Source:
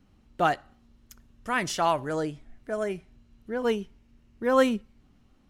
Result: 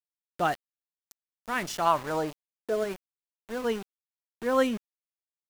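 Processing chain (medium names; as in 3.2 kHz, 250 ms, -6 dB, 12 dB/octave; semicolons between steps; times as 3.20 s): 1.85–2.83 s: peaking EQ 1.4 kHz -> 350 Hz +12 dB 0.72 oct; small samples zeroed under -33.5 dBFS; trim -3 dB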